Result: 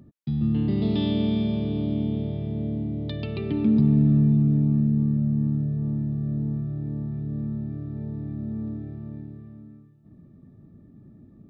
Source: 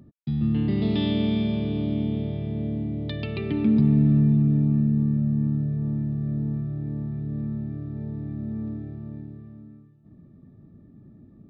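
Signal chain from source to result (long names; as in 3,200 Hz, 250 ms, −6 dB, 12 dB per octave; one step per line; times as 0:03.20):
dynamic equaliser 2,000 Hz, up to −6 dB, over −54 dBFS, Q 1.3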